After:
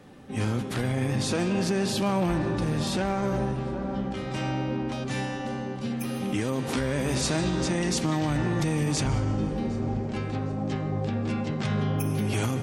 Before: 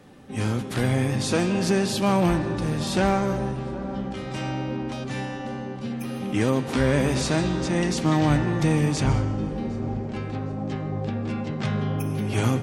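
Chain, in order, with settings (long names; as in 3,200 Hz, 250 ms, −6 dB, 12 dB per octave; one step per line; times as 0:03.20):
brickwall limiter −18 dBFS, peak gain reduction 8.5 dB
high-shelf EQ 5,000 Hz −2 dB, from 0:05.08 +5.5 dB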